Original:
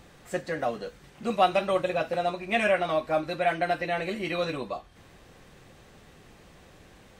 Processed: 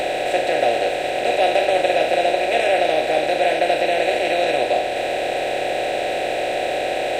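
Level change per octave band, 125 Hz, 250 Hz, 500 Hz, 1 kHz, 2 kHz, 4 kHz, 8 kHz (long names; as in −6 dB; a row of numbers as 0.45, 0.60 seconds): −1.0 dB, +5.0 dB, +11.0 dB, +10.0 dB, +9.5 dB, +13.0 dB, can't be measured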